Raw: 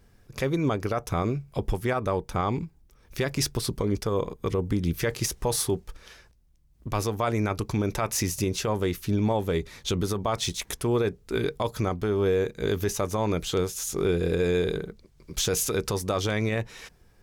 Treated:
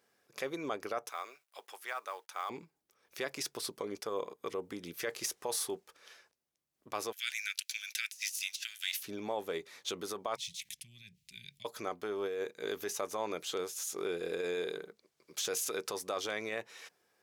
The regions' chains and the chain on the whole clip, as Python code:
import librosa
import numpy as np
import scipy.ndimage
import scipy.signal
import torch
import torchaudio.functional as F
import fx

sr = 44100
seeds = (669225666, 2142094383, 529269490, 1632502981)

y = fx.chain(x, sr, fx.highpass(hz=1000.0, slope=12),
    fx.quant_companded(bits=6), at=(1.09, 2.5))
y = fx.chain(y, sr, fx.steep_highpass(hz=1500.0, slope=96),
    fx.high_shelf_res(hz=2100.0, db=7.0, q=1.5),
    fx.leveller(passes=1), at=(7.12, 9.03))
y = fx.chain(y, sr, fx.cheby2_bandstop(low_hz=290.0, high_hz=1400.0, order=4, stop_db=40),
    fx.high_shelf(hz=2400.0, db=-10.5),
    fx.env_flatten(amount_pct=50), at=(10.36, 11.65))
y = scipy.signal.sosfilt(scipy.signal.butter(2, 450.0, 'highpass', fs=sr, output='sos'), y)
y = fx.notch(y, sr, hz=930.0, q=21.0)
y = fx.over_compress(y, sr, threshold_db=-27.0, ratio=-0.5)
y = y * librosa.db_to_amplitude(-7.5)